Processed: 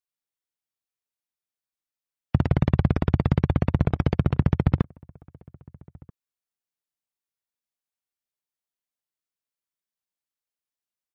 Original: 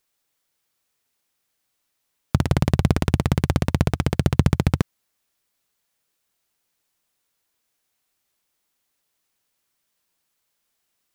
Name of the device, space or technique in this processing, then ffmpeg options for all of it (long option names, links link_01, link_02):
limiter into clipper: -filter_complex "[0:a]alimiter=limit=-6.5dB:level=0:latency=1:release=474,asoftclip=type=hard:threshold=-9.5dB,afftdn=noise_reduction=21:noise_floor=-37,asplit=2[link_01][link_02];[link_02]adelay=1283,volume=-26dB,highshelf=frequency=4000:gain=-28.9[link_03];[link_01][link_03]amix=inputs=2:normalize=0,volume=1.5dB"